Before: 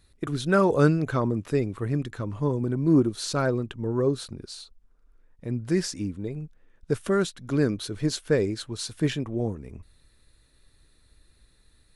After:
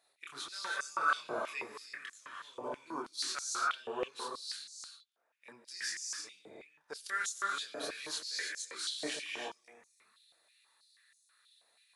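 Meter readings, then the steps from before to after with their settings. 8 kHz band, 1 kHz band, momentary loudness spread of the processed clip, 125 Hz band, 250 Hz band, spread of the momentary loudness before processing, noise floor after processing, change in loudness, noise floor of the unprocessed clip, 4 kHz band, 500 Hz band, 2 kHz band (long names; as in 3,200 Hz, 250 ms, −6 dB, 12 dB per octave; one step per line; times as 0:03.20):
−1.5 dB, −4.0 dB, 15 LU, below −40 dB, −26.0 dB, 14 LU, −74 dBFS, −12.0 dB, −62 dBFS, −2.0 dB, −18.5 dB, −2.0 dB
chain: multi-voice chorus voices 2, 0.37 Hz, delay 26 ms, depth 4.7 ms
reverb whose tail is shaped and stops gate 350 ms rising, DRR 1.5 dB
high-pass on a step sequencer 6.2 Hz 680–6,400 Hz
level −4 dB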